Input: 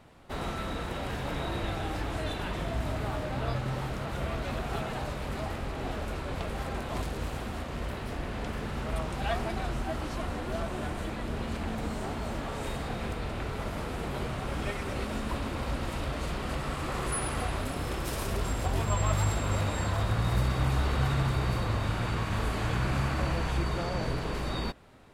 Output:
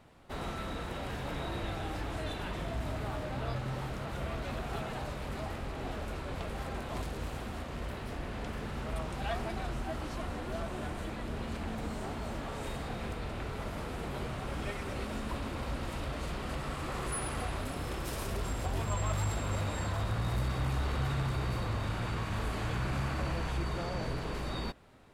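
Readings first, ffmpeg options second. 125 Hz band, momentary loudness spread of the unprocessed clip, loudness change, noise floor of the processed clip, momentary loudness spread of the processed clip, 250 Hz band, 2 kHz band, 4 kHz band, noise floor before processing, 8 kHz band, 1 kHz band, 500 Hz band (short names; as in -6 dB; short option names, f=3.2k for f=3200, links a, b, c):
-4.5 dB, 7 LU, -4.5 dB, -40 dBFS, 6 LU, -4.0 dB, -4.0 dB, -4.0 dB, -36 dBFS, -4.5 dB, -4.0 dB, -4.0 dB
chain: -af "asoftclip=type=tanh:threshold=-20dB,volume=-3.5dB"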